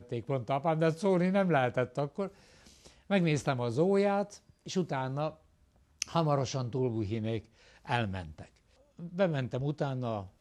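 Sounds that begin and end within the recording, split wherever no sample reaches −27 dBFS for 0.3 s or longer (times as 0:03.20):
0:03.12–0:04.23
0:04.76–0:05.28
0:06.02–0:07.37
0:07.90–0:08.20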